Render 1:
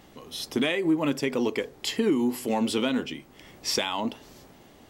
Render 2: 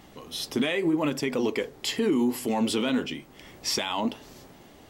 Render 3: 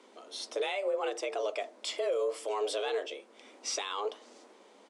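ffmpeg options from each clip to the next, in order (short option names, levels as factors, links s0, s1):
-af "alimiter=limit=0.112:level=0:latency=1:release=16,flanger=delay=0.9:depth=6.9:regen=-73:speed=0.8:shape=sinusoidal,volume=2"
-af "afreqshift=200,aresample=22050,aresample=44100,volume=0.447"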